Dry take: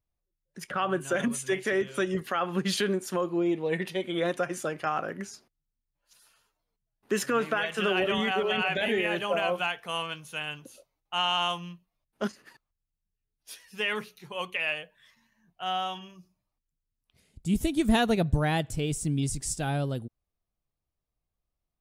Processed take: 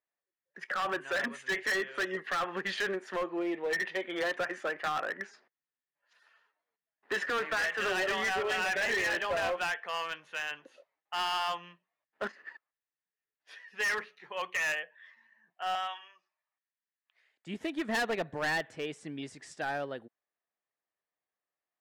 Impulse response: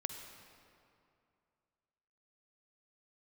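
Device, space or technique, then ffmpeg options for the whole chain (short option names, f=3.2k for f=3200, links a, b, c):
megaphone: -filter_complex "[0:a]asettb=1/sr,asplit=3[a][b][c];[a]atrim=end=15.754[d];[b]atrim=start=15.75:end=17.47,asetpts=PTS-STARTPTS,afade=t=in:d=0.004:c=qsin,afade=t=out:st=1.716:d=0.004:c=qsin,highpass=900[e];[c]atrim=start=17.466[f];[d][e]acrossfade=d=0.004:c1=hsin:c2=qsin[g];[g][f]acrossfade=d=0.004:c1=qsin:c2=hsin,highpass=470,lowpass=2.6k,equalizer=f=1.8k:t=o:w=0.32:g=11,asoftclip=type=hard:threshold=-27.5dB"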